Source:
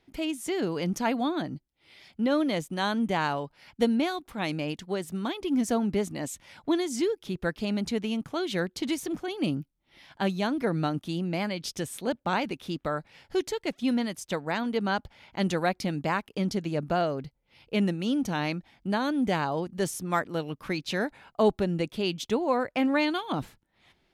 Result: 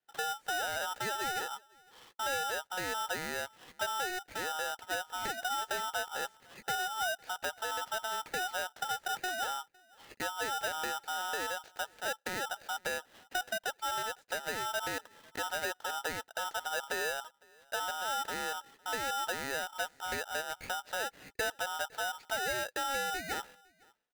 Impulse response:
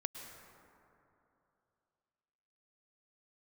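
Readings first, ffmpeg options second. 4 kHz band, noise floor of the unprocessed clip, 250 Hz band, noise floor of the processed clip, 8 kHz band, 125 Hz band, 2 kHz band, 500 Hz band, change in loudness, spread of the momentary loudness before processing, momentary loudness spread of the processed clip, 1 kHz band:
−1.0 dB, −73 dBFS, −24.0 dB, −68 dBFS, +2.0 dB, −21.5 dB, +0.5 dB, −10.5 dB, −6.0 dB, 8 LU, 5 LU, −2.5 dB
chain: -filter_complex "[0:a]acrossover=split=450|1100[link_01][link_02][link_03];[link_03]acompressor=threshold=-50dB:ratio=6[link_04];[link_01][link_02][link_04]amix=inputs=3:normalize=0,asoftclip=type=tanh:threshold=-17.5dB,agate=range=-22dB:threshold=-54dB:ratio=16:detection=peak,asplit=2[link_05][link_06];[link_06]alimiter=level_in=5.5dB:limit=-24dB:level=0:latency=1:release=96,volume=-5.5dB,volume=1dB[link_07];[link_05][link_07]amix=inputs=2:normalize=0,highpass=290,lowpass=2300,equalizer=frequency=620:width_type=o:width=0.3:gain=6,acrusher=bits=6:mode=log:mix=0:aa=0.000001,acrossover=split=460|1200[link_08][link_09][link_10];[link_08]acompressor=threshold=-31dB:ratio=4[link_11];[link_09]acompressor=threshold=-39dB:ratio=4[link_12];[link_10]acompressor=threshold=-49dB:ratio=4[link_13];[link_11][link_12][link_13]amix=inputs=3:normalize=0,asplit=2[link_14][link_15];[link_15]adelay=507.3,volume=-27dB,highshelf=frequency=4000:gain=-11.4[link_16];[link_14][link_16]amix=inputs=2:normalize=0,aeval=exprs='val(0)*sgn(sin(2*PI*1100*n/s))':channel_layout=same,volume=-3.5dB"

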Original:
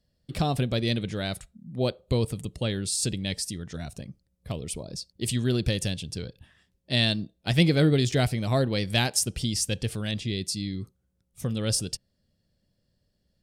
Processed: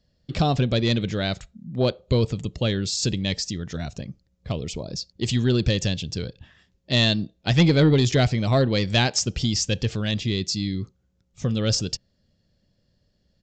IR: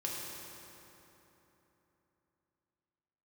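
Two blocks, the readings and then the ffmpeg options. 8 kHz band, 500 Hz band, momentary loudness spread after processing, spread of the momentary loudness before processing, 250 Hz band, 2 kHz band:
0.0 dB, +4.5 dB, 13 LU, 15 LU, +4.5 dB, +3.5 dB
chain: -af "acontrast=37,asoftclip=type=tanh:threshold=-8dB,aresample=16000,aresample=44100"

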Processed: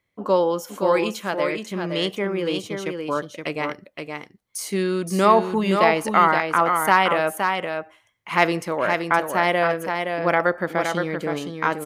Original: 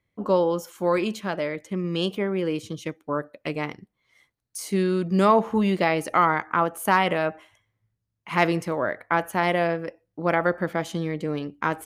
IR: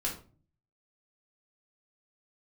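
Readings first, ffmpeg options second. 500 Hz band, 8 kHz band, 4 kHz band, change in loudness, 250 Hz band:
+3.0 dB, +5.0 dB, +5.0 dB, +3.0 dB, 0.0 dB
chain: -af "lowshelf=frequency=280:gain=-9,aecho=1:1:519:0.531,volume=4dB"

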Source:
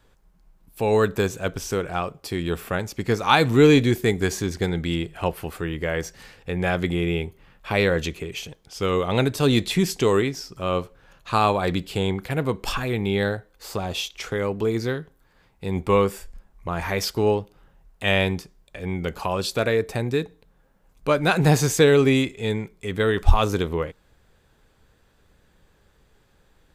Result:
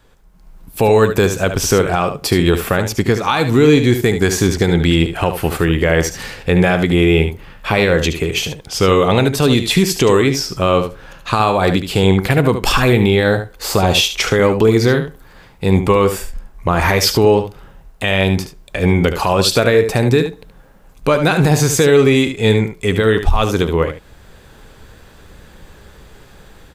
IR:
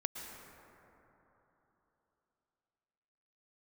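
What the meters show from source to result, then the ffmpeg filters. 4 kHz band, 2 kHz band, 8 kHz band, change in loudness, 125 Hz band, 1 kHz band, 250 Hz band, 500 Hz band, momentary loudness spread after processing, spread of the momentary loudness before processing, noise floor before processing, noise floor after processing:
+10.0 dB, +8.5 dB, +11.0 dB, +8.5 dB, +9.0 dB, +7.5 dB, +8.5 dB, +8.5 dB, 7 LU, 13 LU, −61 dBFS, −44 dBFS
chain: -af "dynaudnorm=framelen=290:gausssize=3:maxgain=11dB,alimiter=limit=-10.5dB:level=0:latency=1:release=190,aecho=1:1:73:0.335,volume=7dB"

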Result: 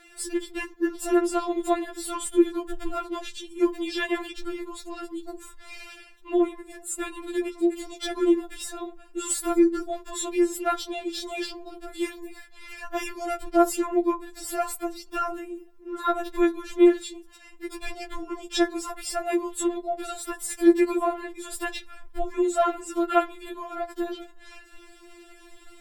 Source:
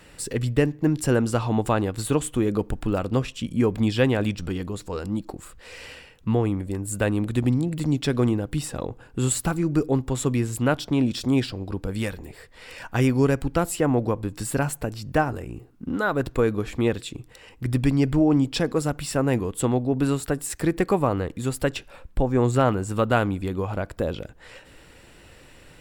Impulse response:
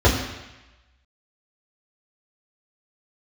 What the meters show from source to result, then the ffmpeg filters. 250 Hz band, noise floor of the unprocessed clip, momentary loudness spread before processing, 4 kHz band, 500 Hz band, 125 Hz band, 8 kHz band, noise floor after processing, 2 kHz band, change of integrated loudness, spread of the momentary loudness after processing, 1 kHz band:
−2.0 dB, −50 dBFS, 11 LU, −1.0 dB, −1.5 dB, below −35 dB, −1.0 dB, −50 dBFS, −3.5 dB, −2.5 dB, 17 LU, +0.5 dB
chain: -filter_complex "[0:a]asplit=2[link_01][link_02];[1:a]atrim=start_sample=2205,atrim=end_sample=3528[link_03];[link_02][link_03]afir=irnorm=-1:irlink=0,volume=-33.5dB[link_04];[link_01][link_04]amix=inputs=2:normalize=0,afftfilt=real='re*4*eq(mod(b,16),0)':imag='im*4*eq(mod(b,16),0)':win_size=2048:overlap=0.75,volume=1dB"

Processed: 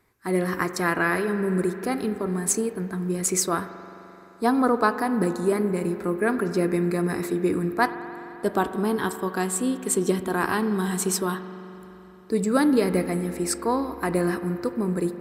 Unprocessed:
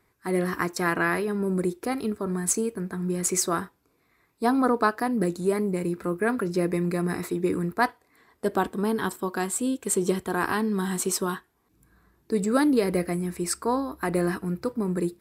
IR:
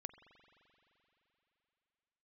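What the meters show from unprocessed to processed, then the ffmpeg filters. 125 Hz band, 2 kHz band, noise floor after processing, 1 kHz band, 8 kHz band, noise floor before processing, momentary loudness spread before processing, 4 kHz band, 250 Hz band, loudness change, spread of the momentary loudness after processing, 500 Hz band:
+1.5 dB, +1.5 dB, −46 dBFS, +1.5 dB, +1.0 dB, −68 dBFS, 6 LU, +1.5 dB, +1.5 dB, +1.5 dB, 7 LU, +2.0 dB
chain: -filter_complex "[1:a]atrim=start_sample=2205[link_01];[0:a][link_01]afir=irnorm=-1:irlink=0,volume=6.5dB"

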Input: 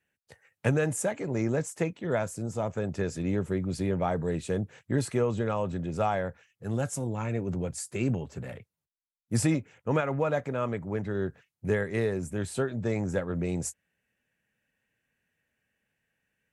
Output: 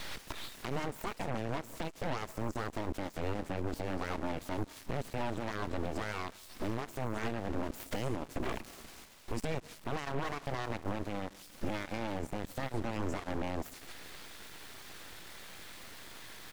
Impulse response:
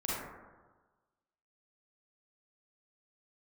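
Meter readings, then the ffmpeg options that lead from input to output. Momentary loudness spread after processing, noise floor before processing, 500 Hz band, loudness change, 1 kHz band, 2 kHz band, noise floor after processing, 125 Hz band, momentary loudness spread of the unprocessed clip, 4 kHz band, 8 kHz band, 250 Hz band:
11 LU, below −85 dBFS, −9.5 dB, −9.0 dB, −3.0 dB, −4.5 dB, −54 dBFS, −10.0 dB, 6 LU, +2.0 dB, −11.5 dB, −8.5 dB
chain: -filter_complex "[0:a]aeval=exprs='val(0)+0.5*0.0133*sgn(val(0))':channel_layout=same,aemphasis=mode=reproduction:type=50fm,acompressor=threshold=-40dB:ratio=8,alimiter=level_in=13dB:limit=-24dB:level=0:latency=1:release=27,volume=-13dB,aecho=1:1:225:0.075,aeval=exprs='abs(val(0))':channel_layout=same,asplit=2[link_01][link_02];[1:a]atrim=start_sample=2205,adelay=111[link_03];[link_02][link_03]afir=irnorm=-1:irlink=0,volume=-20dB[link_04];[link_01][link_04]amix=inputs=2:normalize=0,aeval=exprs='0.0168*(cos(1*acos(clip(val(0)/0.0168,-1,1)))-cos(1*PI/2))+0.00188*(cos(3*acos(clip(val(0)/0.0168,-1,1)))-cos(3*PI/2))+0.00473*(cos(6*acos(clip(val(0)/0.0168,-1,1)))-cos(6*PI/2))+0.00473*(cos(8*acos(clip(val(0)/0.0168,-1,1)))-cos(8*PI/2))':channel_layout=same,volume=10.5dB"

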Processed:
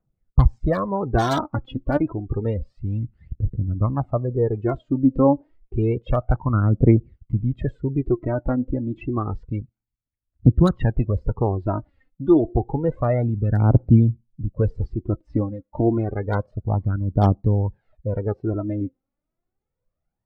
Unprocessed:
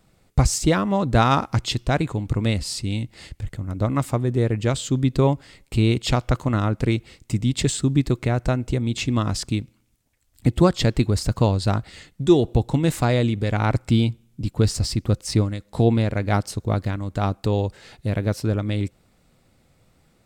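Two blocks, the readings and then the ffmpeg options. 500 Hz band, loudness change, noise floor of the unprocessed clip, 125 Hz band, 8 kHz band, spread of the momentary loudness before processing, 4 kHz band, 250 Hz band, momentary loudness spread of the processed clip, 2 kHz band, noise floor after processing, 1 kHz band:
0.0 dB, 0.0 dB, −62 dBFS, +0.5 dB, below −20 dB, 9 LU, below −15 dB, +0.5 dB, 11 LU, −7.0 dB, −83 dBFS, −2.0 dB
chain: -filter_complex "[0:a]lowpass=1400,aphaser=in_gain=1:out_gain=1:delay=3.9:decay=0.63:speed=0.29:type=triangular,acrossover=split=600|1000[link_01][link_02][link_03];[link_03]aeval=exprs='(mod(11.9*val(0)+1,2)-1)/11.9':channel_layout=same[link_04];[link_01][link_02][link_04]amix=inputs=3:normalize=0,afftdn=noise_reduction=23:noise_floor=-31,volume=-1.5dB"

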